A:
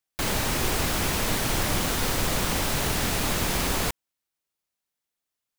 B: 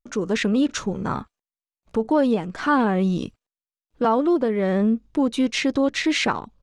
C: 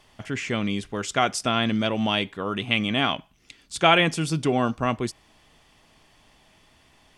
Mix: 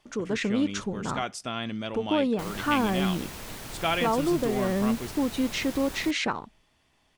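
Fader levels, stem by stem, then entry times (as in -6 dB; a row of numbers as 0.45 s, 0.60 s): -14.0 dB, -6.0 dB, -9.5 dB; 2.20 s, 0.00 s, 0.00 s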